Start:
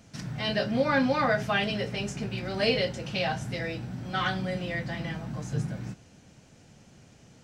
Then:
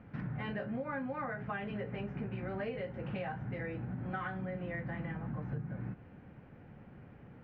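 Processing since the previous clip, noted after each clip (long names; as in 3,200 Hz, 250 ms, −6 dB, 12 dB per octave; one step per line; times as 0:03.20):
low-pass filter 2,000 Hz 24 dB per octave
notch filter 650 Hz, Q 12
downward compressor 10 to 1, threshold −37 dBFS, peak gain reduction 17 dB
level +1.5 dB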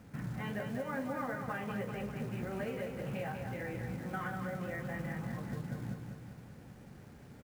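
log-companded quantiser 6 bits
flanger 1.7 Hz, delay 9.1 ms, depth 9 ms, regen +81%
repeating echo 196 ms, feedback 58%, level −6 dB
level +3.5 dB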